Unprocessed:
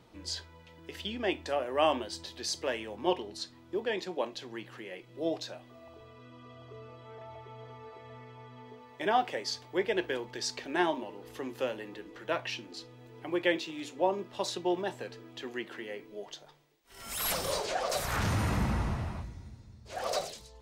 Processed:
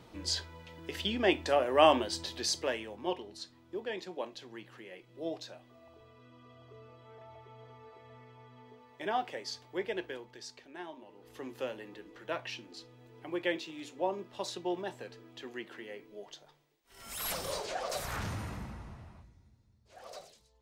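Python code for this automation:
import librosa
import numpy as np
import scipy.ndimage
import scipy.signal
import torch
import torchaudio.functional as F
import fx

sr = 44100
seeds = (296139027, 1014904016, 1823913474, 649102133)

y = fx.gain(x, sr, db=fx.line((2.36, 4.0), (3.08, -5.5), (9.9, -5.5), (10.85, -17.0), (11.43, -4.5), (18.07, -4.5), (18.79, -15.5)))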